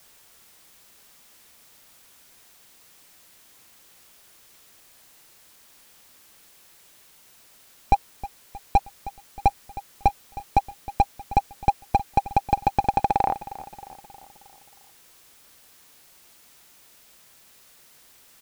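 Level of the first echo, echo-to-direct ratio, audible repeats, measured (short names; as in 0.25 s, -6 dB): -16.5 dB, -15.0 dB, 4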